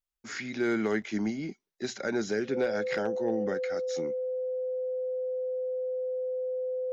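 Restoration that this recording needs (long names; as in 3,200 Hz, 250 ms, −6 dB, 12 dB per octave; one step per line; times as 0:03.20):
clipped peaks rebuilt −19.5 dBFS
notch filter 510 Hz, Q 30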